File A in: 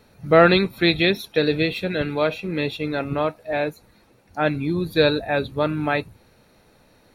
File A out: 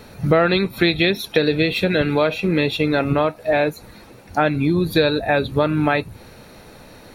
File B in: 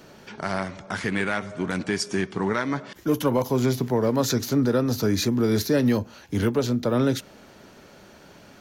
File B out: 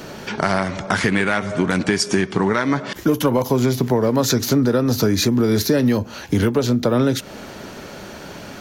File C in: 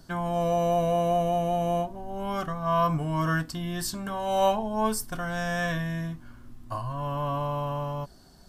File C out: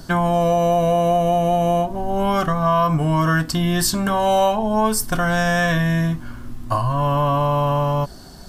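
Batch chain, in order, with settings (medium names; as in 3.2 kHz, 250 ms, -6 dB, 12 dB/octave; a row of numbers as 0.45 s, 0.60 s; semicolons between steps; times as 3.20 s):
compression 4:1, threshold -29 dBFS; normalise loudness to -19 LUFS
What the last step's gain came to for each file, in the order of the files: +13.0 dB, +13.5 dB, +14.0 dB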